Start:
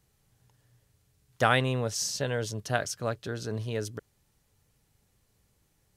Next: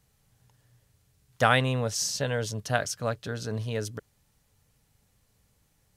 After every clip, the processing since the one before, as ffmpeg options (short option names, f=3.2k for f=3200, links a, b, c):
-af "equalizer=f=360:w=6.7:g=-10.5,volume=2dB"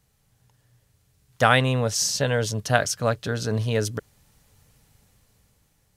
-af "dynaudnorm=f=330:g=9:m=10.5dB,volume=1dB"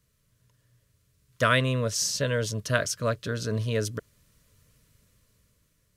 -af "asuperstop=centerf=800:order=8:qfactor=3.1,volume=-3.5dB"